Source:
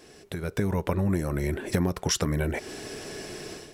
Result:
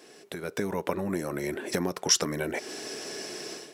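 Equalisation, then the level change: HPF 250 Hz 12 dB/oct; dynamic EQ 5600 Hz, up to +6 dB, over -51 dBFS, Q 2; 0.0 dB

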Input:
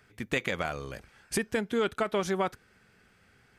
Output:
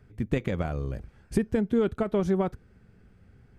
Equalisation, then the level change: tilt shelf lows +9 dB, about 730 Hz; low shelf 97 Hz +10 dB; -1.5 dB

